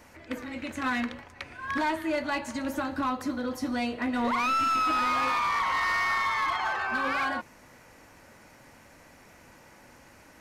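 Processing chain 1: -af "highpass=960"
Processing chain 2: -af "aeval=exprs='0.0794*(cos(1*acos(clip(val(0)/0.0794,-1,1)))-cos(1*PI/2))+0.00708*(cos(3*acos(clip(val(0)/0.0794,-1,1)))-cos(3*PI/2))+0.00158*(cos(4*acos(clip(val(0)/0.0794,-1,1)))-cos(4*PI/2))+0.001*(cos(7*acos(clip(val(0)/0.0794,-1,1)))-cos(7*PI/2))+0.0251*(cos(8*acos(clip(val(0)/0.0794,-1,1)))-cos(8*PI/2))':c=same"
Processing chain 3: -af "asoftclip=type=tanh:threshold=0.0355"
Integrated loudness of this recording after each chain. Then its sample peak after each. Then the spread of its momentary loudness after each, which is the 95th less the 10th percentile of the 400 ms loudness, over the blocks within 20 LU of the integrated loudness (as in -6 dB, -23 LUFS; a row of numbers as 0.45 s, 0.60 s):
-30.0 LUFS, -27.5 LUFS, -32.5 LUFS; -19.0 dBFS, -18.0 dBFS, -29.0 dBFS; 15 LU, 10 LU, 9 LU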